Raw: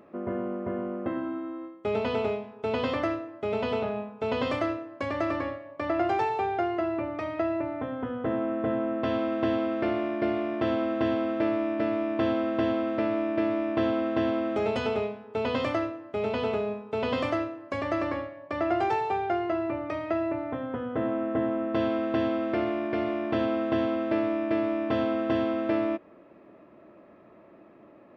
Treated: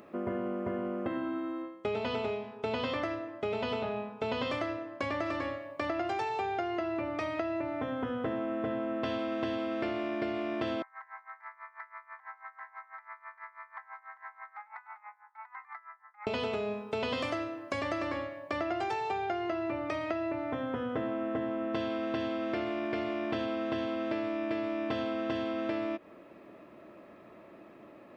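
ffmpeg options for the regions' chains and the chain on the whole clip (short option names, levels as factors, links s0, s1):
-filter_complex "[0:a]asettb=1/sr,asplit=3[s0][s1][s2];[s0]atrim=end=1.624[s3];[s1]atrim=start=1.62:end=5.26,asetpts=PTS-STARTPTS,afade=t=in:d=0.004:c=qsin,afade=t=out:st=3.636:d=0.004:c=qsin,lowpass=f=3900:p=1,asplit=2[s4][s5];[s5]adelay=17,volume=0.224[s6];[s4][s6]amix=inputs=2:normalize=0,atrim=end_sample=160524[s7];[s2]atrim=start=5.256[s8];[s3][s7]acrossfade=d=0.004:c1=hsin:c2=qsin[s9];[s9][s8]acrossfade=d=0.004:c1=qsin:c2=hsin,asettb=1/sr,asplit=3[s10][s11][s12];[s10]atrim=end=10.824[s13];[s11]atrim=start=10.82:end=16.27,asetpts=PTS-STARTPTS,afade=t=in:d=0.004:c=qsin,afade=t=out:st=5.446:d=0.004:c=qsin,asuperpass=centerf=1300:order=20:qfactor=0.92,acompressor=threshold=0.00891:ratio=4:attack=3.2:release=140:knee=1:detection=peak,aeval=exprs='val(0)*pow(10,-20*(0.5-0.5*cos(2*PI*6.1*n/s))/20)':c=same[s14];[s12]atrim=start=16.266[s15];[s13][s14]acrossfade=d=0.004:c1=hsin:c2=qsin[s16];[s16][s15]acrossfade=d=0.004:c1=qsin:c2=hsin,highshelf=f=2700:g=11,acompressor=threshold=0.0316:ratio=6"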